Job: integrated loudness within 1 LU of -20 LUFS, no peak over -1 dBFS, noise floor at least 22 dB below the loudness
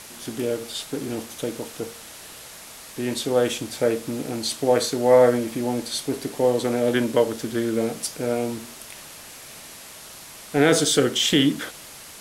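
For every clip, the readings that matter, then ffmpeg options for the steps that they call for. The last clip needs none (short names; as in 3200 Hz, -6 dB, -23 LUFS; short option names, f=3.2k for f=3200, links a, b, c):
noise floor -42 dBFS; noise floor target -45 dBFS; loudness -23.0 LUFS; peak -4.5 dBFS; loudness target -20.0 LUFS
-> -af "afftdn=nr=6:nf=-42"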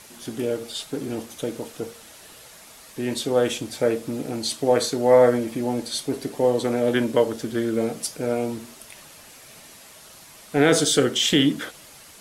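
noise floor -47 dBFS; loudness -23.0 LUFS; peak -4.5 dBFS; loudness target -20.0 LUFS
-> -af "volume=3dB"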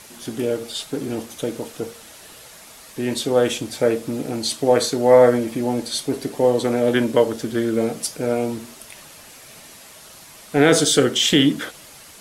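loudness -20.0 LUFS; peak -1.5 dBFS; noise floor -44 dBFS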